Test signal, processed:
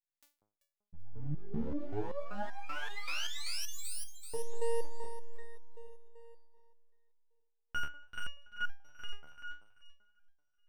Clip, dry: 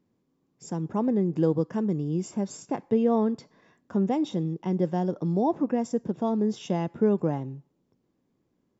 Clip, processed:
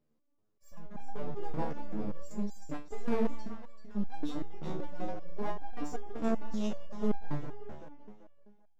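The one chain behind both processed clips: echo whose repeats swap between lows and highs 193 ms, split 880 Hz, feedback 60%, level -4.5 dB; half-wave rectifier; resonator arpeggio 5.2 Hz 75–800 Hz; trim +5 dB

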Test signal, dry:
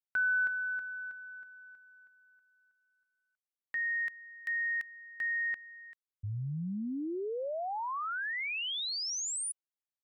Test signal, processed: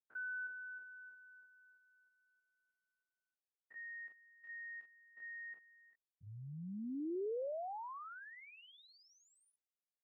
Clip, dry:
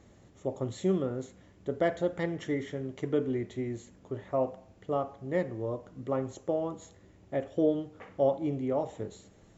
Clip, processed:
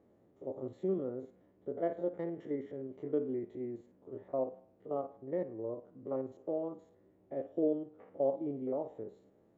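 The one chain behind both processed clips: spectrogram pixelated in time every 50 ms; band-pass filter 420 Hz, Q 1; trim -3 dB

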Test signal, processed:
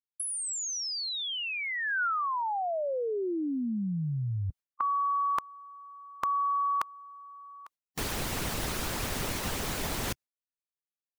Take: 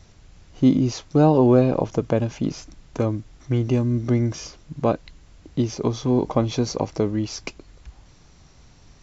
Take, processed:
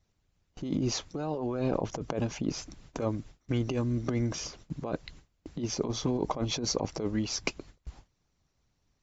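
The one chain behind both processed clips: gate with hold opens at -36 dBFS; harmonic-percussive split harmonic -10 dB; compressor with a negative ratio -28 dBFS, ratio -1; trim -2 dB

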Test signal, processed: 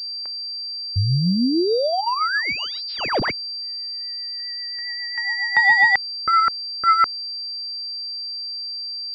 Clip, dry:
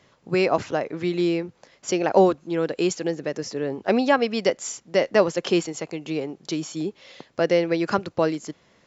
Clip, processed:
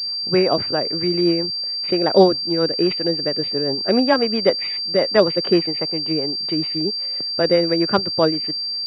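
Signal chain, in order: rotary cabinet horn 7.5 Hz; class-D stage that switches slowly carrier 4.7 kHz; trim +5.5 dB

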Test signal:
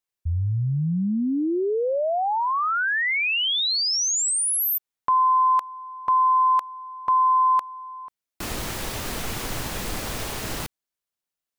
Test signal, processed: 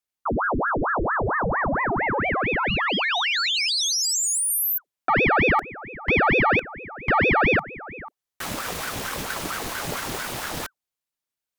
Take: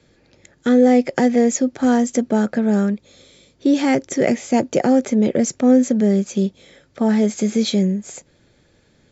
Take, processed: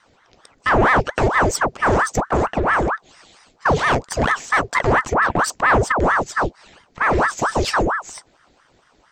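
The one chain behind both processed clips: Chebyshev shaper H 5 -22 dB, 8 -24 dB, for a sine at -3.5 dBFS; ring modulator with a swept carrier 840 Hz, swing 85%, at 4.4 Hz

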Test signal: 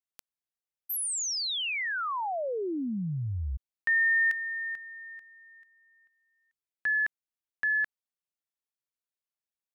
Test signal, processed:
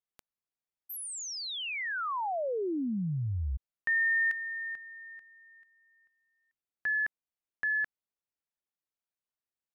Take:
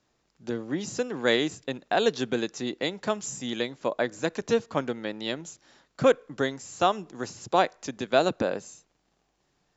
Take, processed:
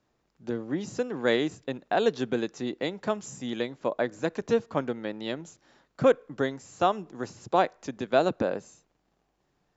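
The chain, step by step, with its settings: treble shelf 2.5 kHz -8.5 dB

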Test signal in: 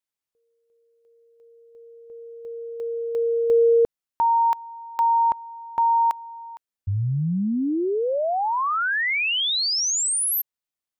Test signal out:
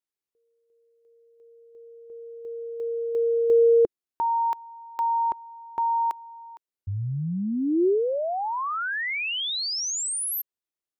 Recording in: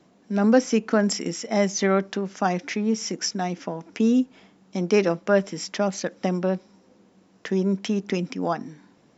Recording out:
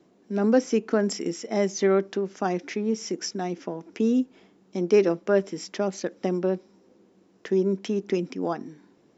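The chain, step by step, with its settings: peaking EQ 370 Hz +9 dB 0.72 oct; trim -5.5 dB

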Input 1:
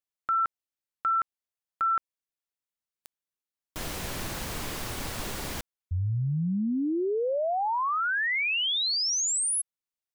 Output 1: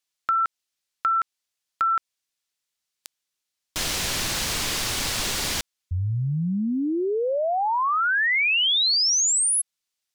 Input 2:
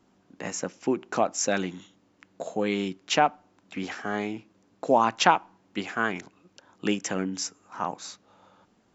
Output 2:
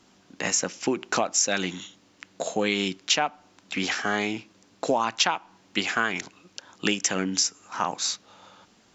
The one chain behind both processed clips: peaking EQ 4.9 kHz +11.5 dB 2.9 oct; compression 6:1, threshold -23 dBFS; trim +3 dB

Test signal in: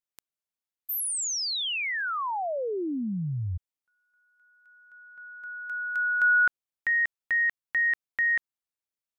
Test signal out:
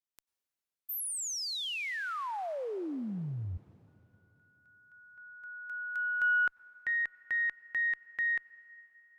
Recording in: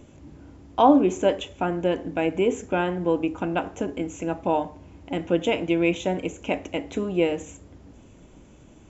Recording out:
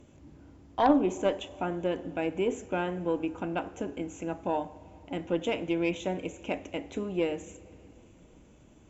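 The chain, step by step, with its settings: plate-style reverb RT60 3.4 s, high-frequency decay 1×, pre-delay 80 ms, DRR 20 dB; Chebyshev shaper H 4 -15 dB, 6 -23 dB, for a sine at -3.5 dBFS; trim -6.5 dB

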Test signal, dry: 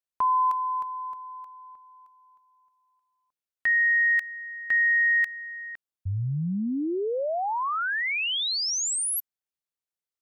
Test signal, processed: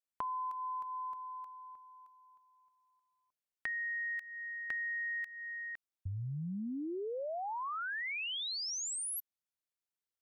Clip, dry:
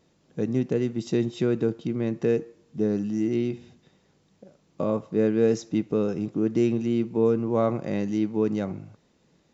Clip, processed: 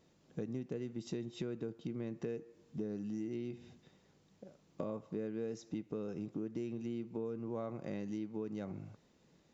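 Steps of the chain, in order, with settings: compression 6:1, threshold -33 dBFS; trim -4.5 dB

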